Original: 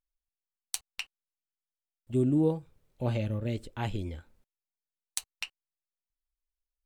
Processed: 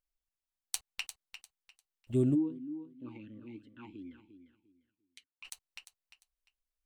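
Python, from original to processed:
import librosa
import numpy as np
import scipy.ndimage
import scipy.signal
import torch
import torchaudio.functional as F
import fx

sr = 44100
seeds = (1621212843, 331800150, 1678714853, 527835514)

y = fx.echo_feedback(x, sr, ms=349, feedback_pct=25, wet_db=-11)
y = fx.vowel_sweep(y, sr, vowels='i-u', hz=2.7, at=(2.34, 5.44), fade=0.02)
y = y * librosa.db_to_amplitude(-1.5)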